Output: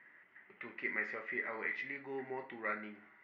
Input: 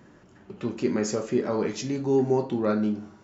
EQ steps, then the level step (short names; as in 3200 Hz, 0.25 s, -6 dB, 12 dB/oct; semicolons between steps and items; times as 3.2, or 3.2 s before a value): band-pass 2000 Hz, Q 13; air absorption 380 m; +16.5 dB